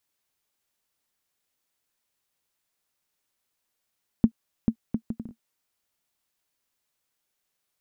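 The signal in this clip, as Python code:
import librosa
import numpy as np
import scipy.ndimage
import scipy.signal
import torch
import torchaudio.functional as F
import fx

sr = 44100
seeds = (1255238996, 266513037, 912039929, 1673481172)

y = fx.bouncing_ball(sr, first_gap_s=0.44, ratio=0.6, hz=226.0, decay_ms=76.0, level_db=-6.5)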